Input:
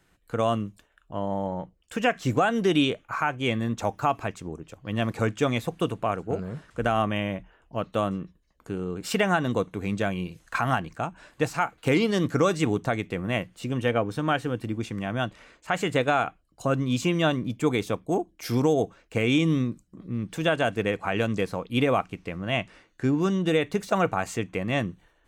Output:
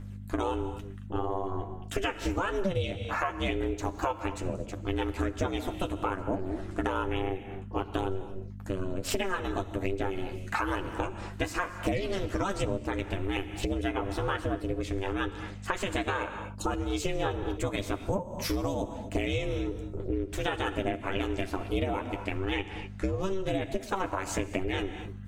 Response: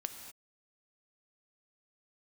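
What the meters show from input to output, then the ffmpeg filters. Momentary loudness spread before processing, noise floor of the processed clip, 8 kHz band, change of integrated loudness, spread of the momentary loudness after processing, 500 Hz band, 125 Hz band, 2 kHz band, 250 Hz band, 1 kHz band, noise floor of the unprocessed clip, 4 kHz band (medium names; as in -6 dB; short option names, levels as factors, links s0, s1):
11 LU, -42 dBFS, -1.5 dB, -5.5 dB, 5 LU, -5.5 dB, -5.5 dB, -5.5 dB, -6.5 dB, -5.5 dB, -65 dBFS, -5.0 dB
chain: -filter_complex "[0:a]aphaser=in_gain=1:out_gain=1:delay=1.3:decay=0.43:speed=1.1:type=triangular,aeval=exprs='val(0)*sin(2*PI*190*n/s)':c=same,aeval=exprs='val(0)+0.00708*(sin(2*PI*50*n/s)+sin(2*PI*2*50*n/s)/2+sin(2*PI*3*50*n/s)/3+sin(2*PI*4*50*n/s)/4+sin(2*PI*5*50*n/s)/5)':c=same,asplit=2[s0][s1];[1:a]atrim=start_sample=2205,adelay=10[s2];[s1][s2]afir=irnorm=-1:irlink=0,volume=0.631[s3];[s0][s3]amix=inputs=2:normalize=0,acompressor=threshold=0.0251:ratio=6,volume=1.78"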